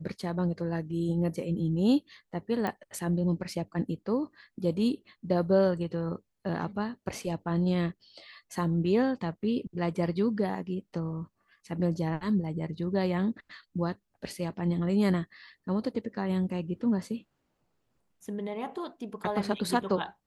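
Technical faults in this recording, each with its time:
0:02.67: click −19 dBFS

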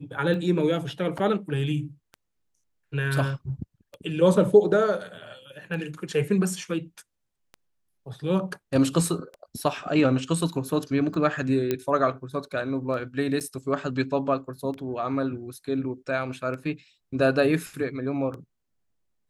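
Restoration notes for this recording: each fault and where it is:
scratch tick 33 1/3 rpm −26 dBFS
0:01.18–0:01.19: drop-out 6.6 ms
0:11.71: click −12 dBFS
0:13.40–0:13.41: drop-out 8 ms

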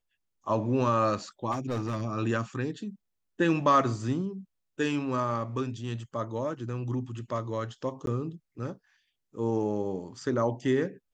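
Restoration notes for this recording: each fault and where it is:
0:01.51–0:02.03: clipping −26.5 dBFS
0:08.06–0:08.07: drop-out 12 ms

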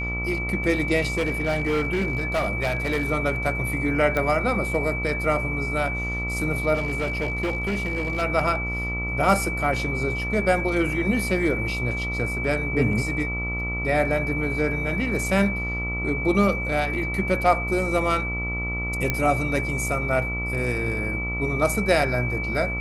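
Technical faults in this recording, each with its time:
mains buzz 60 Hz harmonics 23 −30 dBFS
whistle 2,300 Hz −28 dBFS
0:01.18–0:03.12: clipping −19 dBFS
0:04.17: click −12 dBFS
0:06.74–0:08.23: clipping −21 dBFS
0:19.10: click −8 dBFS

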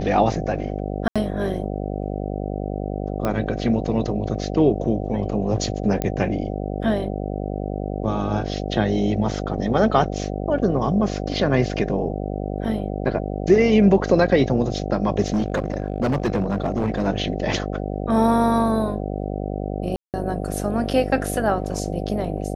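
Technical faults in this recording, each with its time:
mains buzz 50 Hz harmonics 15 −27 dBFS
0:01.08–0:01.16: drop-out 76 ms
0:03.25: click −11 dBFS
0:06.02: click −10 dBFS
0:15.26–0:17.08: clipping −16.5 dBFS
0:19.96–0:20.14: drop-out 178 ms

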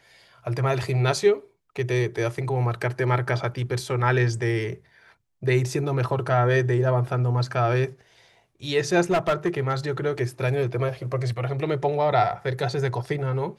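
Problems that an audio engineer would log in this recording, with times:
0:09.01–0:09.73: clipping −17 dBFS

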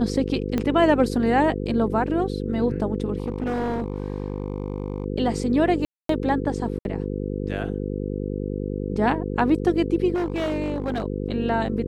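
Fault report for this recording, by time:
mains buzz 50 Hz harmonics 10 −28 dBFS
0:00.58: click −12 dBFS
0:03.18–0:05.06: clipping −21.5 dBFS
0:05.85–0:06.09: drop-out 243 ms
0:06.79–0:06.85: drop-out 61 ms
0:10.14–0:11.04: clipping −21 dBFS

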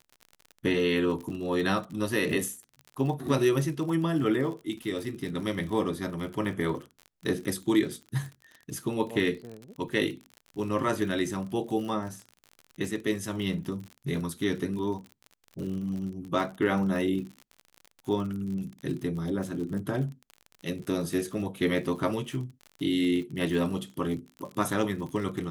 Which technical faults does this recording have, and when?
surface crackle 50 per second −36 dBFS

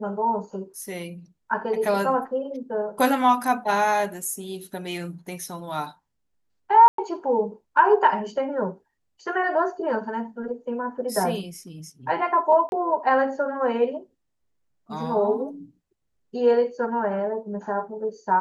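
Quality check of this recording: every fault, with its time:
0:06.88–0:06.98: drop-out 103 ms
0:12.69–0:12.72: drop-out 31 ms

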